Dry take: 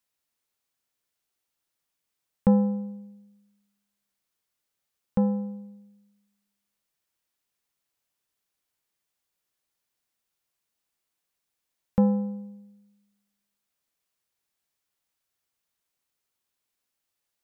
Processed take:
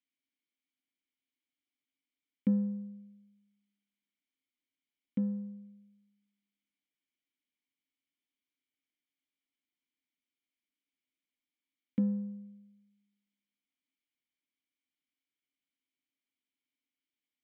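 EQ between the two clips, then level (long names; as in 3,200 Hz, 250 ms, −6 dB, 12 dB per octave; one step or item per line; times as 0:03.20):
formant filter i
parametric band 940 Hz +14.5 dB 0.23 octaves
+5.0 dB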